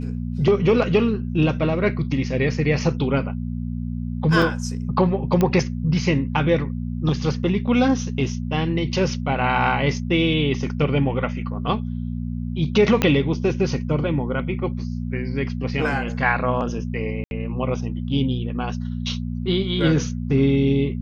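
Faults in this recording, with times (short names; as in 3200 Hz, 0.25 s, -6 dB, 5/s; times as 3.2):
hum 60 Hz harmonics 4 -27 dBFS
4.42 gap 2.9 ms
5.41 pop -8 dBFS
13.02 pop -5 dBFS
17.24–17.31 gap 71 ms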